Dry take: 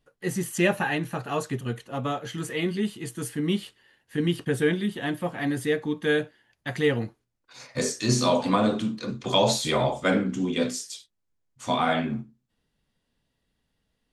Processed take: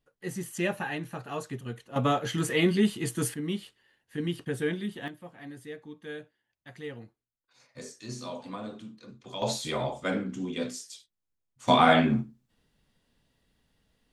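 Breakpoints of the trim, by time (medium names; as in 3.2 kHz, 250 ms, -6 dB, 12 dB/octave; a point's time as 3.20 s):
-7 dB
from 1.96 s +3.5 dB
from 3.34 s -6.5 dB
from 5.08 s -16.5 dB
from 9.42 s -7 dB
from 11.68 s +4.5 dB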